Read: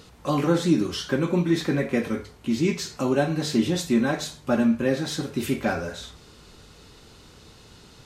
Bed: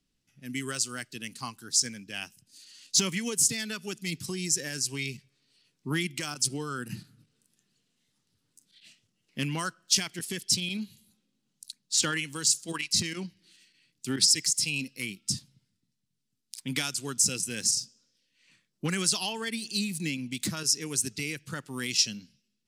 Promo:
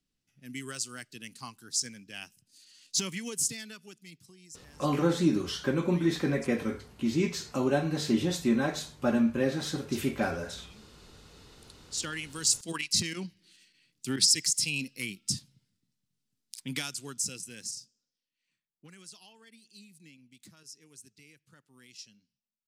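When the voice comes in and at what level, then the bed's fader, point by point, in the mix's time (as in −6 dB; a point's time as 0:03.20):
4.55 s, −4.5 dB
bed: 0:03.46 −5.5 dB
0:04.40 −22.5 dB
0:11.08 −22.5 dB
0:12.51 −1 dB
0:16.45 −1 dB
0:18.88 −23 dB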